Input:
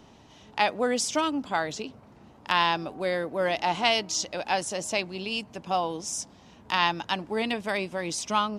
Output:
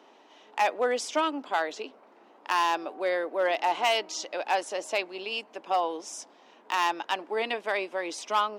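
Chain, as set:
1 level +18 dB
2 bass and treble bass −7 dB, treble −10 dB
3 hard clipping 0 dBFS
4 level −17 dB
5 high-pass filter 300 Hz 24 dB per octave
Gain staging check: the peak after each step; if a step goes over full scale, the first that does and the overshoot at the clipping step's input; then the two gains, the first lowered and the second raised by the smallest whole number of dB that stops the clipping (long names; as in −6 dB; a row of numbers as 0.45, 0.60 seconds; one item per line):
+11.0, +9.5, 0.0, −17.0, −12.0 dBFS
step 1, 9.5 dB
step 1 +8 dB, step 4 −7 dB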